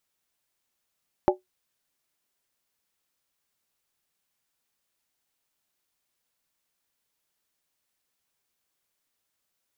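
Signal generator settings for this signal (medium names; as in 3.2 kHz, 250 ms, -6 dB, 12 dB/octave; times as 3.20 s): skin hit, lowest mode 369 Hz, modes 4, decay 0.15 s, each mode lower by 2 dB, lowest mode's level -14.5 dB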